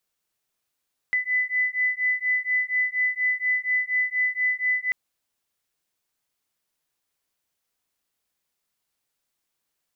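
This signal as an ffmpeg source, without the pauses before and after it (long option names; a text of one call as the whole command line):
ffmpeg -f lavfi -i "aevalsrc='0.0596*(sin(2*PI*2000*t)+sin(2*PI*2004.2*t))':duration=3.79:sample_rate=44100" out.wav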